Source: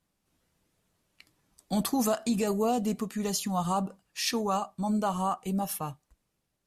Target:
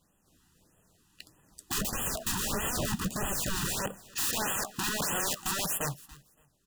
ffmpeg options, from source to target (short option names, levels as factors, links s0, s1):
-filter_complex "[0:a]aeval=exprs='(mod(35.5*val(0)+1,2)-1)/35.5':c=same,asettb=1/sr,asplit=3[s0][s1][s2];[s0]atrim=end=1.784[s3];[s1]atrim=start=1.78:end=3.79,asetpts=PTS-STARTPTS,afade=t=in:d=0.004:c=qsin,afade=t=out:st=2.006:d=0.004:c=qsin,lowshelf=f=210:g=11[s4];[s2]atrim=start=3.786[s5];[s3][s4]acrossfade=d=0.004:c1=hsin:c2=qsin[s6];[s6][s5]acrossfade=d=0.004:c1=qsin:c2=hsin,acrusher=bits=3:mode=log:mix=0:aa=0.000001,equalizer=f=7300:t=o:w=0.26:g=4,alimiter=level_in=2.24:limit=0.0631:level=0:latency=1:release=270,volume=0.447,asuperstop=centerf=2200:order=8:qfactor=5,aecho=1:1:283|566:0.0891|0.0187,afftfilt=real='re*(1-between(b*sr/1024,510*pow(4900/510,0.5+0.5*sin(2*PI*1.6*pts/sr))/1.41,510*pow(4900/510,0.5+0.5*sin(2*PI*1.6*pts/sr))*1.41))':imag='im*(1-between(b*sr/1024,510*pow(4900/510,0.5+0.5*sin(2*PI*1.6*pts/sr))/1.41,510*pow(4900/510,0.5+0.5*sin(2*PI*1.6*pts/sr))*1.41))':win_size=1024:overlap=0.75,volume=2.51"